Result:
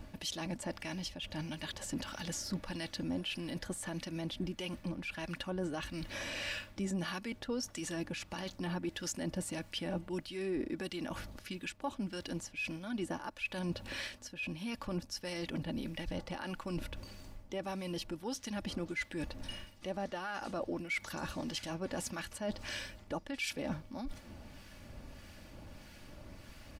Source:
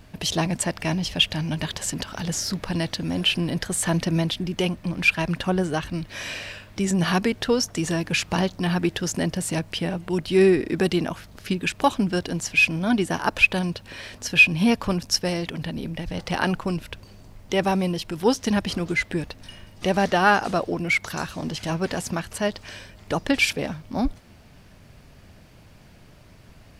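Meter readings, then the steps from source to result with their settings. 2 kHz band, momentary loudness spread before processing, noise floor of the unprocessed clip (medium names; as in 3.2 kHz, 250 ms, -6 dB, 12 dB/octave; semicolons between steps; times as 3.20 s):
-17.5 dB, 12 LU, -49 dBFS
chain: comb 3.5 ms, depth 45%; reverse; compression 8:1, threshold -32 dBFS, peak gain reduction 23 dB; reverse; peak limiter -27 dBFS, peak gain reduction 8 dB; harmonic tremolo 1.6 Hz, depth 50%, crossover 1.2 kHz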